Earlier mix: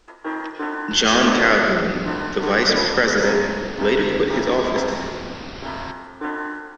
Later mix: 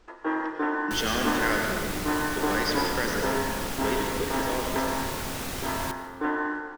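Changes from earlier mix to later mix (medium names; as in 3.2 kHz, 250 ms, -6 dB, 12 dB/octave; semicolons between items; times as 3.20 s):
speech -12.0 dB; first sound: add treble shelf 3.7 kHz -9.5 dB; second sound: remove Chebyshev low-pass 5.7 kHz, order 10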